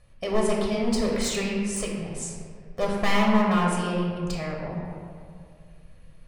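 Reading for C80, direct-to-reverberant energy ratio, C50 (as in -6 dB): 2.5 dB, -2.0 dB, 0.5 dB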